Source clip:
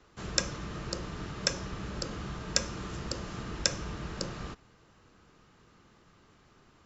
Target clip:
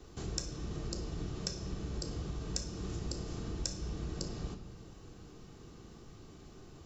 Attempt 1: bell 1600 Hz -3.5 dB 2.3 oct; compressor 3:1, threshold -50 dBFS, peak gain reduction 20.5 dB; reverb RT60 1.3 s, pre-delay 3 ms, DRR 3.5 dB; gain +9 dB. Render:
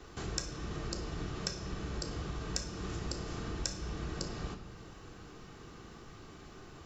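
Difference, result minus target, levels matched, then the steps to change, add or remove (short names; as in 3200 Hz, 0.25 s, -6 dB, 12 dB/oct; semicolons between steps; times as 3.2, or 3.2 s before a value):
2000 Hz band +7.0 dB
change: bell 1600 Hz -13 dB 2.3 oct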